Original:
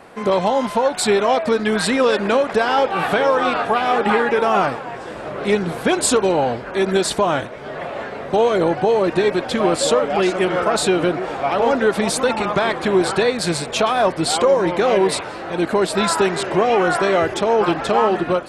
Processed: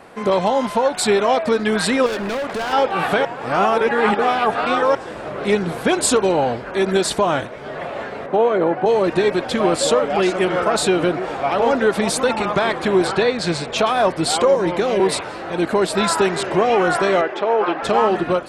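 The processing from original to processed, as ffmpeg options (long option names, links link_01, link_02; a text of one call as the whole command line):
ffmpeg -i in.wav -filter_complex "[0:a]asettb=1/sr,asplit=3[link_01][link_02][link_03];[link_01]atrim=end=2.064[link_04];[link_02]atrim=start=2.06:end=2.73,asetpts=PTS-STARTPTS,afade=type=in:duration=0.004:curve=qsin,afade=type=out:start_time=0.666:duration=0.004:curve=qsin,volume=21.5dB,asoftclip=hard,volume=-21.5dB[link_05];[link_03]atrim=start=2.726[link_06];[link_04][link_05]acrossfade=duration=0.004:curve1=hsin:curve2=qsin[link_07];[link_07][link_06]acrossfade=duration=0.004:curve1=qsin:curve2=hsin,asettb=1/sr,asplit=3[link_08][link_09][link_10];[link_08]atrim=end=8.264[link_11];[link_09]atrim=start=8.26:end=8.86,asetpts=PTS-STARTPTS,afade=type=in:duration=0.004:curve=qsin,afade=type=out:start_time=0.596:duration=0.004:curve=qsin,acrossover=split=160 2500:gain=0.178 1 0.158[link_12][link_13][link_14];[link_12][link_13][link_14]amix=inputs=3:normalize=0[link_15];[link_10]atrim=start=8.856[link_16];[link_11][link_15]acrossfade=duration=0.004:curve1=hsin:curve2=qsin[link_17];[link_17][link_16]acrossfade=duration=0.004:curve1=qsin:curve2=hsin,asettb=1/sr,asplit=3[link_18][link_19][link_20];[link_18]atrim=end=13.074[link_21];[link_19]atrim=start=13.07:end=13.78,asetpts=PTS-STARTPTS,afade=type=in:duration=0.004:curve=qsin,afade=type=out:start_time=0.706:duration=0.004:curve=qsin,lowpass=6100[link_22];[link_20]atrim=start=13.776[link_23];[link_21][link_22]acrossfade=duration=0.004:curve1=hsin:curve2=qsin[link_24];[link_24][link_23]acrossfade=duration=0.004:curve1=qsin:curve2=hsin,asettb=1/sr,asplit=3[link_25][link_26][link_27];[link_25]atrim=end=14.554[link_28];[link_26]atrim=start=14.55:end=15,asetpts=PTS-STARTPTS,afade=type=in:duration=0.004:curve=qsin,afade=type=out:start_time=0.446:duration=0.004:curve=qsin,acrossover=split=450|3000[link_29][link_30][link_31];[link_30]acompressor=threshold=-21dB:ratio=6:attack=3.2:release=140:knee=2.83:detection=peak[link_32];[link_29][link_32][link_31]amix=inputs=3:normalize=0[link_33];[link_27]atrim=start=14.996[link_34];[link_28][link_33]acrossfade=duration=0.004:curve1=hsin:curve2=qsin[link_35];[link_35][link_34]acrossfade=duration=0.004:curve1=qsin:curve2=hsin,asettb=1/sr,asplit=3[link_36][link_37][link_38];[link_36]atrim=end=17.214[link_39];[link_37]atrim=start=17.21:end=17.83,asetpts=PTS-STARTPTS,afade=type=in:duration=0.004:curve=qsin,afade=type=out:start_time=0.616:duration=0.004:curve=qsin,highpass=360,lowpass=2800[link_40];[link_38]atrim=start=17.826[link_41];[link_39][link_40]acrossfade=duration=0.004:curve1=hsin:curve2=qsin[link_42];[link_42][link_41]acrossfade=duration=0.004:curve1=qsin:curve2=hsin,asplit=3[link_43][link_44][link_45];[link_43]atrim=end=3.252[link_46];[link_44]atrim=start=3.248:end=4.952,asetpts=PTS-STARTPTS,areverse[link_47];[link_45]atrim=start=4.948[link_48];[link_46][link_47]acrossfade=duration=0.004:curve1=hsin:curve2=hsin[link_49];[link_49][link_48]acrossfade=duration=0.004:curve1=hsin:curve2=hsin" out.wav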